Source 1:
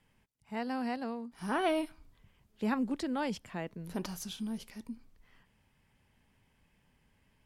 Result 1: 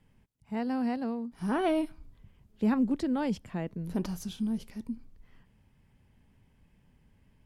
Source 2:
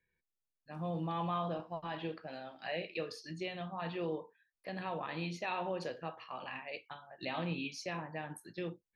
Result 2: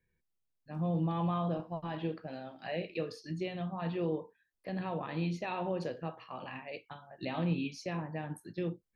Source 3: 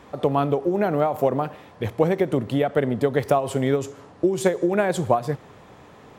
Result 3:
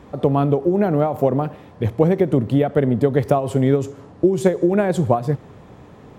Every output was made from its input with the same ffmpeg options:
-af "lowshelf=frequency=470:gain=11,volume=-2.5dB"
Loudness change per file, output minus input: +4.0, +3.0, +4.0 LU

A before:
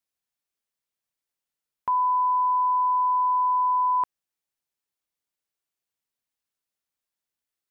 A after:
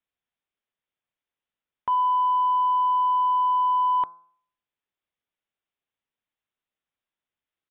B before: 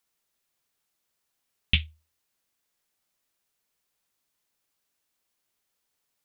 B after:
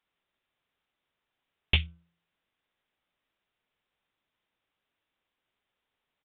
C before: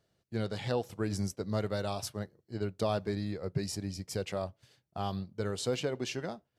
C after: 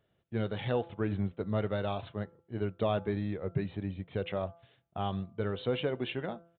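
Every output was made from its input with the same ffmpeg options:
-af "bandreject=frequency=169.1:width_type=h:width=4,bandreject=frequency=338.2:width_type=h:width=4,bandreject=frequency=507.3:width_type=h:width=4,bandreject=frequency=676.4:width_type=h:width=4,bandreject=frequency=845.5:width_type=h:width=4,bandreject=frequency=1014.6:width_type=h:width=4,bandreject=frequency=1183.7:width_type=h:width=4,bandreject=frequency=1352.8:width_type=h:width=4,bandreject=frequency=1521.9:width_type=h:width=4,aresample=8000,asoftclip=type=tanh:threshold=-15dB,aresample=44100,volume=1.5dB"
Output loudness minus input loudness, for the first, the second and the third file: +0.5, −1.5, +1.0 LU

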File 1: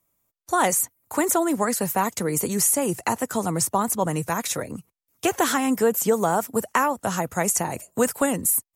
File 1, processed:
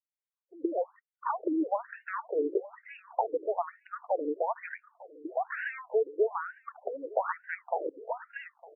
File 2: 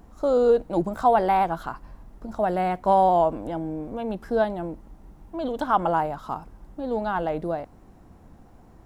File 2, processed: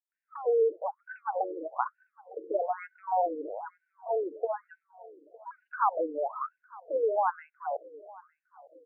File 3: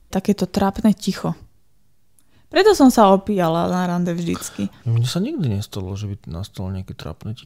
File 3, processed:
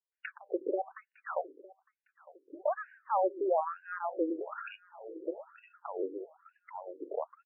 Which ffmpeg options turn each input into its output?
-filter_complex "[0:a]afftdn=noise_reduction=25:noise_floor=-41,highshelf=frequency=2900:gain=-11,acompressor=threshold=-28dB:ratio=16,acrossover=split=240[link_01][link_02];[link_02]adelay=120[link_03];[link_01][link_03]amix=inputs=2:normalize=0,afreqshift=-17,asplit=2[link_04][link_05];[link_05]adelay=907,lowpass=frequency=1900:poles=1,volume=-21dB,asplit=2[link_06][link_07];[link_07]adelay=907,lowpass=frequency=1900:poles=1,volume=0.54,asplit=2[link_08][link_09];[link_09]adelay=907,lowpass=frequency=1900:poles=1,volume=0.54,asplit=2[link_10][link_11];[link_11]adelay=907,lowpass=frequency=1900:poles=1,volume=0.54[link_12];[link_06][link_08][link_10][link_12]amix=inputs=4:normalize=0[link_13];[link_04][link_13]amix=inputs=2:normalize=0,afftfilt=real='re*between(b*sr/1024,380*pow(2100/380,0.5+0.5*sin(2*PI*1.1*pts/sr))/1.41,380*pow(2100/380,0.5+0.5*sin(2*PI*1.1*pts/sr))*1.41)':imag='im*between(b*sr/1024,380*pow(2100/380,0.5+0.5*sin(2*PI*1.1*pts/sr))/1.41,380*pow(2100/380,0.5+0.5*sin(2*PI*1.1*pts/sr))*1.41)':win_size=1024:overlap=0.75,volume=8dB"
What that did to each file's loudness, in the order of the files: −10.5, −7.5, −17.0 LU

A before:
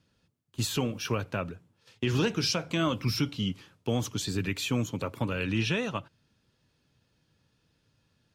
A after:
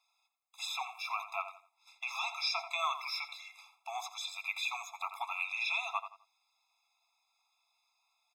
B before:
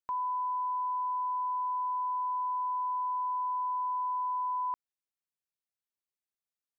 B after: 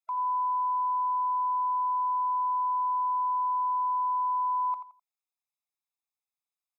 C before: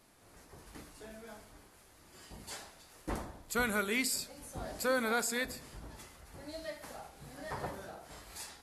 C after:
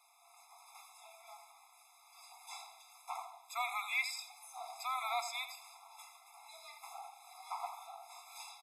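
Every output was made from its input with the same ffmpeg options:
-filter_complex "[0:a]acrossover=split=5200[link_01][link_02];[link_02]acompressor=threshold=-50dB:ratio=4:attack=1:release=60[link_03];[link_01][link_03]amix=inputs=2:normalize=0,asplit=2[link_04][link_05];[link_05]adelay=85,lowpass=frequency=3300:poles=1,volume=-10dB,asplit=2[link_06][link_07];[link_07]adelay=85,lowpass=frequency=3300:poles=1,volume=0.29,asplit=2[link_08][link_09];[link_09]adelay=85,lowpass=frequency=3300:poles=1,volume=0.29[link_10];[link_04][link_06][link_08][link_10]amix=inputs=4:normalize=0,afftfilt=real='re*eq(mod(floor(b*sr/1024/680),2),1)':imag='im*eq(mod(floor(b*sr/1024/680),2),1)':win_size=1024:overlap=0.75,volume=1.5dB"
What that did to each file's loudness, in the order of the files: −6.0, +4.5, −5.0 LU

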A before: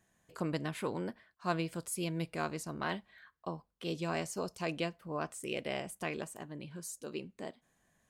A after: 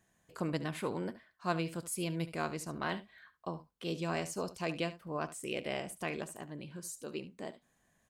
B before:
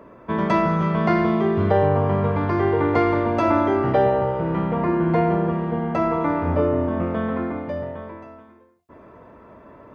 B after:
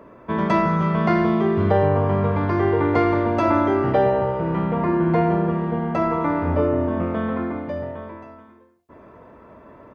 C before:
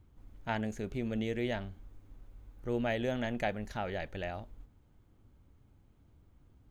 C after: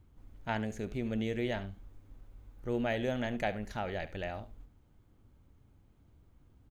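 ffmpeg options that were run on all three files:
-af "aecho=1:1:72:0.178"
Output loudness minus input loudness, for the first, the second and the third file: 0.0, +0.5, 0.0 LU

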